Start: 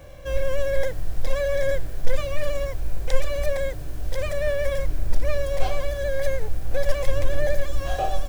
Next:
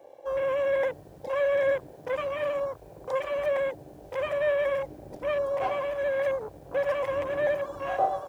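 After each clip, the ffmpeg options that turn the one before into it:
-af "highpass=230,afwtdn=0.0158,equalizer=f=990:w=3.7:g=8"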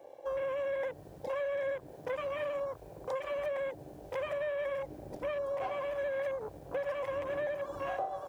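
-af "acompressor=threshold=0.0282:ratio=6,volume=0.841"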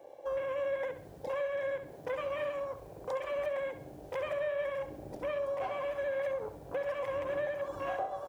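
-af "aecho=1:1:67|134|201|268:0.282|0.116|0.0474|0.0194"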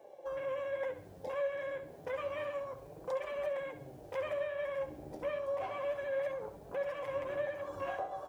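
-af "flanger=delay=4.5:depth=9.3:regen=44:speed=0.3:shape=triangular,volume=1.19"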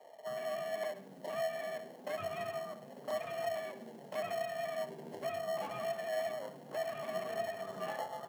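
-filter_complex "[0:a]asplit=2[s0][s1];[s1]acrusher=samples=37:mix=1:aa=0.000001,volume=0.501[s2];[s0][s2]amix=inputs=2:normalize=0,afreqshift=92,volume=0.75"

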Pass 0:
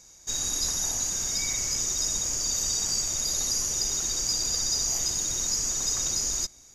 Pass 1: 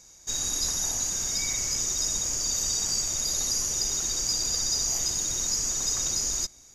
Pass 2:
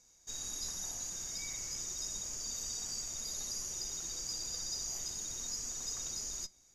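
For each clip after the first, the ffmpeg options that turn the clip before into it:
-af anull
-af "flanger=delay=4.1:depth=2:regen=79:speed=0.35:shape=sinusoidal,volume=0.398"

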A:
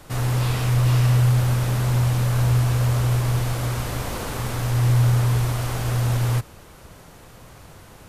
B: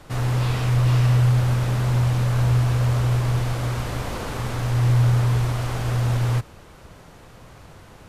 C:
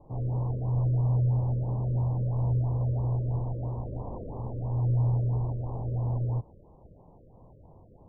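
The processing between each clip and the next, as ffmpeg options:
-af "highshelf=f=8700:g=-11.5"
-af "asuperstop=centerf=2000:order=12:qfactor=0.68,afftfilt=real='re*lt(b*sr/1024,600*pow(2200/600,0.5+0.5*sin(2*PI*3*pts/sr)))':imag='im*lt(b*sr/1024,600*pow(2200/600,0.5+0.5*sin(2*PI*3*pts/sr)))':win_size=1024:overlap=0.75,volume=0.422"

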